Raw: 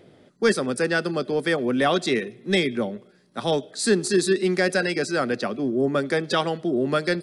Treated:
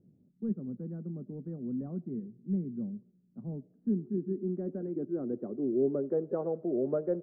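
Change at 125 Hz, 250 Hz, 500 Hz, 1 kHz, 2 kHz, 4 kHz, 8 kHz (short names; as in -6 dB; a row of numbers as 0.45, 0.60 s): -7.0 dB, -8.0 dB, -11.0 dB, under -20 dB, under -40 dB, under -40 dB, under -40 dB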